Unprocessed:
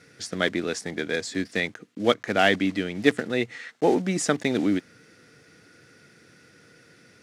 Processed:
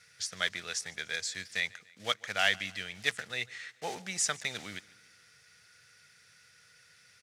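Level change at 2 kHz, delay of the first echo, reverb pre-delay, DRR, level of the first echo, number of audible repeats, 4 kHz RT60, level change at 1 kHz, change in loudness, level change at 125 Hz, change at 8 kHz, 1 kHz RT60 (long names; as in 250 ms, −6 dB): −5.0 dB, 145 ms, no reverb audible, no reverb audible, −23.0 dB, 3, no reverb audible, −10.5 dB, −8.0 dB, −16.0 dB, +0.5 dB, no reverb audible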